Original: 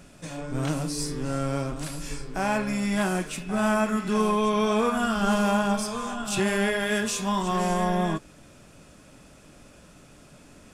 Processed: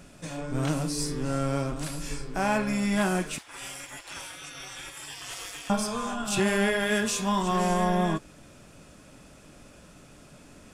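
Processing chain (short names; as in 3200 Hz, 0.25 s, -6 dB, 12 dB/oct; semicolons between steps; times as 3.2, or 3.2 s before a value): 3.38–5.7 spectral gate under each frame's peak -25 dB weak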